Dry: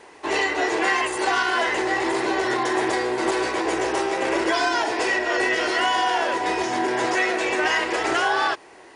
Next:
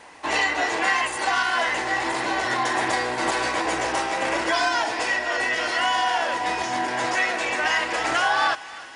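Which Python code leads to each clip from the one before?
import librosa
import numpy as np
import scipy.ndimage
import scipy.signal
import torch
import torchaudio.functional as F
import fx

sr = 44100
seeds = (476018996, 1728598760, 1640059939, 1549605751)

y = fx.peak_eq(x, sr, hz=390.0, db=-15.0, octaves=0.39)
y = fx.rider(y, sr, range_db=5, speed_s=2.0)
y = fx.echo_thinned(y, sr, ms=307, feedback_pct=78, hz=1000.0, wet_db=-17.0)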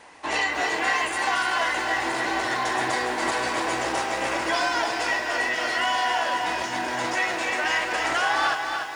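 y = fx.echo_crushed(x, sr, ms=291, feedback_pct=55, bits=8, wet_db=-6)
y = F.gain(torch.from_numpy(y), -2.5).numpy()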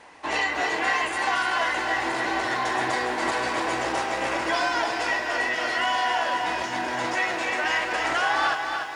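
y = fx.high_shelf(x, sr, hz=6800.0, db=-7.0)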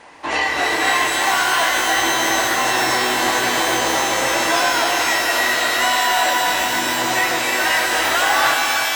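y = fx.rev_shimmer(x, sr, seeds[0], rt60_s=3.4, semitones=12, shimmer_db=-2, drr_db=4.0)
y = F.gain(torch.from_numpy(y), 5.0).numpy()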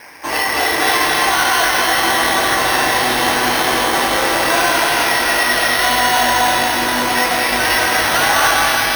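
y = fx.dmg_noise_band(x, sr, seeds[1], low_hz=1500.0, high_hz=2400.0, level_db=-43.0)
y = np.repeat(y[::6], 6)[:len(y)]
y = y + 10.0 ** (-4.0 / 20.0) * np.pad(y, (int(214 * sr / 1000.0), 0))[:len(y)]
y = F.gain(torch.from_numpy(y), 1.5).numpy()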